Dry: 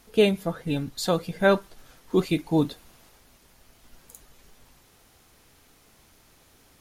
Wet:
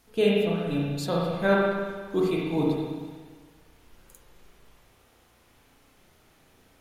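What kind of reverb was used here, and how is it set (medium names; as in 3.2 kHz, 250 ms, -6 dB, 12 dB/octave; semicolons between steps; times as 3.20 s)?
spring tank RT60 1.5 s, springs 35/59 ms, chirp 60 ms, DRR -4.5 dB; trim -6.5 dB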